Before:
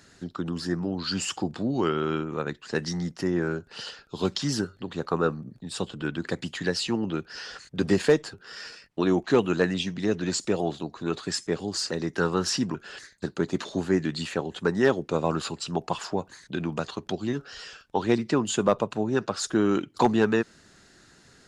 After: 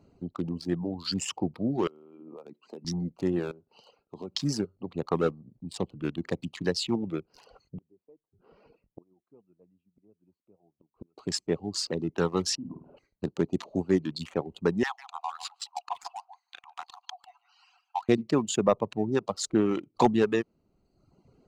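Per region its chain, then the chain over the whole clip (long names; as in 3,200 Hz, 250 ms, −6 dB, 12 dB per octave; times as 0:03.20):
0:01.87–0:02.85: high-pass filter 200 Hz 24 dB per octave + downward compressor, threshold −36 dBFS
0:03.51–0:04.35: high-pass filter 200 Hz 6 dB per octave + downward compressor 2.5 to 1, threshold −37 dBFS
0:07.77–0:11.18: gate with flip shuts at −27 dBFS, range −34 dB + head-to-tape spacing loss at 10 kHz 33 dB
0:12.55–0:12.97: downward compressor 2.5 to 1, threshold −38 dBFS + low-pass filter 1,200 Hz + flutter between parallel walls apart 8.9 metres, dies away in 0.93 s
0:14.83–0:18.09: Chebyshev high-pass filter 710 Hz, order 10 + single-tap delay 147 ms −6.5 dB
whole clip: adaptive Wiener filter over 25 samples; reverb reduction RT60 1 s; parametric band 1,500 Hz −7.5 dB 0.35 octaves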